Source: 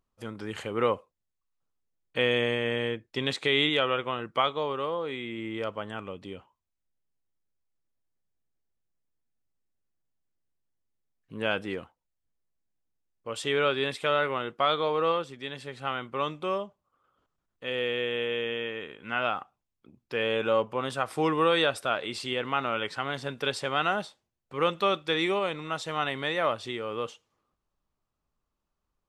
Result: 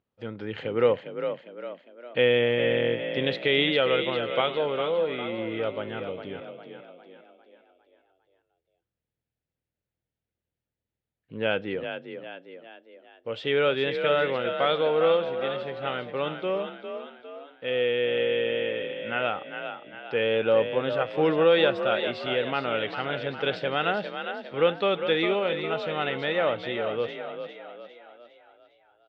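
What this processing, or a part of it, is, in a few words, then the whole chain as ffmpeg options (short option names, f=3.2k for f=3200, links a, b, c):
frequency-shifting delay pedal into a guitar cabinet: -filter_complex "[0:a]asplit=7[a][b][c][d][e][f][g];[b]adelay=404,afreqshift=40,volume=-8dB[h];[c]adelay=808,afreqshift=80,volume=-14.4dB[i];[d]adelay=1212,afreqshift=120,volume=-20.8dB[j];[e]adelay=1616,afreqshift=160,volume=-27.1dB[k];[f]adelay=2020,afreqshift=200,volume=-33.5dB[l];[g]adelay=2424,afreqshift=240,volume=-39.9dB[m];[a][h][i][j][k][l][m]amix=inputs=7:normalize=0,highpass=94,equalizer=f=110:t=q:w=4:g=3,equalizer=f=500:t=q:w=4:g=5,equalizer=f=1.1k:t=q:w=4:g=-9,lowpass=f=3.7k:w=0.5412,lowpass=f=3.7k:w=1.3066,volume=1.5dB"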